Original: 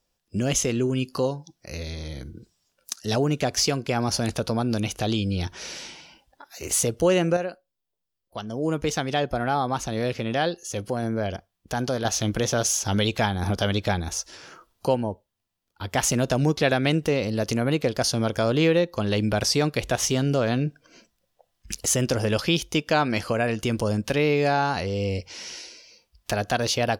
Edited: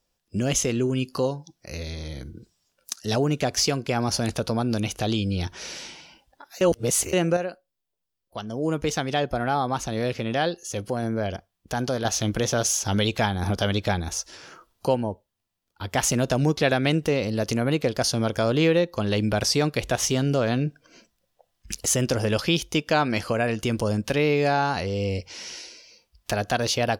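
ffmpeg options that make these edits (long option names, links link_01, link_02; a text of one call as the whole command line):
ffmpeg -i in.wav -filter_complex "[0:a]asplit=3[link_01][link_02][link_03];[link_01]atrim=end=6.612[link_04];[link_02]atrim=start=6.608:end=7.132,asetpts=PTS-STARTPTS,areverse[link_05];[link_03]atrim=start=7.128[link_06];[link_04][link_05]acrossfade=duration=0.004:curve1=hsin:curve2=hsin[link_07];[link_07][link_06]acrossfade=duration=0.004:curve1=hsin:curve2=hsin" out.wav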